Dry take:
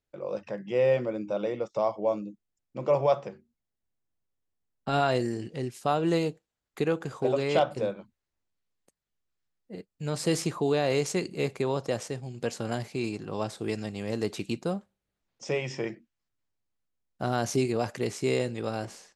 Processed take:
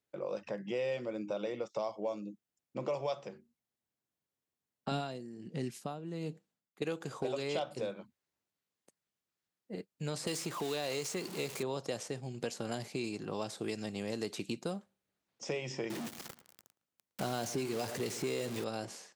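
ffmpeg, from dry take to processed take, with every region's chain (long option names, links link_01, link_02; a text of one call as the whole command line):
ffmpeg -i in.wav -filter_complex "[0:a]asettb=1/sr,asplit=3[link_01][link_02][link_03];[link_01]atrim=end=4.914[link_04];[link_02]atrim=start=4.91:end=6.82,asetpts=PTS-STARTPTS,afade=type=in:duration=0.004:curve=qsin,afade=type=out:start_time=1.906:duration=0.004:curve=qsin,equalizer=frequency=190:width_type=o:width=1.2:gain=11.5,aeval=exprs='val(0)*pow(10,-22*(0.5-0.5*cos(2*PI*1.3*n/s))/20)':channel_layout=same[link_05];[link_03]atrim=start=6.816[link_06];[link_04][link_05]acrossfade=duration=0.004:curve1=hsin:curve2=qsin[link_07];[link_07][link_06]acrossfade=duration=0.004:curve1=qsin:curve2=hsin,asettb=1/sr,asplit=3[link_08][link_09][link_10];[link_08]atrim=end=10.274[link_11];[link_09]atrim=start=10.27:end=11.63,asetpts=PTS-STARTPTS,afade=type=in:duration=0.004:curve=qsin,afade=type=out:start_time=1.356:duration=0.004:curve=qsin,aeval=exprs='val(0)+0.5*0.0178*sgn(val(0))':channel_layout=same,tiltshelf=frequency=1300:gain=-7.5[link_12];[link_10]atrim=start=11.626[link_13];[link_11][link_12]acrossfade=duration=0.004:curve1=hsin:curve2=qsin[link_14];[link_14][link_13]acrossfade=duration=0.004:curve1=qsin:curve2=hsin,asettb=1/sr,asplit=3[link_15][link_16][link_17];[link_15]atrim=end=15.904[link_18];[link_16]atrim=start=15.9:end=18.64,asetpts=PTS-STARTPTS,afade=type=in:duration=0.004:curve=qsin,afade=type=out:start_time=2.736:duration=0.004:curve=qsin,aeval=exprs='val(0)+0.5*0.0266*sgn(val(0))':channel_layout=same,asplit=2[link_19][link_20];[link_20]adelay=112,lowpass=frequency=1900:poles=1,volume=-16.5dB,asplit=2[link_21][link_22];[link_22]adelay=112,lowpass=frequency=1900:poles=1,volume=0.4,asplit=2[link_23][link_24];[link_24]adelay=112,lowpass=frequency=1900:poles=1,volume=0.4[link_25];[link_19][link_21][link_23][link_25]amix=inputs=4:normalize=0,atrim=end_sample=120834[link_26];[link_17]atrim=start=18.636[link_27];[link_18][link_26]acrossfade=duration=0.004:curve1=hsin:curve2=qsin[link_28];[link_28][link_27]acrossfade=duration=0.004:curve1=qsin:curve2=hsin,highpass=130,acrossover=split=1200|2800[link_29][link_30][link_31];[link_29]acompressor=threshold=-35dB:ratio=4[link_32];[link_30]acompressor=threshold=-53dB:ratio=4[link_33];[link_31]acompressor=threshold=-43dB:ratio=4[link_34];[link_32][link_33][link_34]amix=inputs=3:normalize=0" out.wav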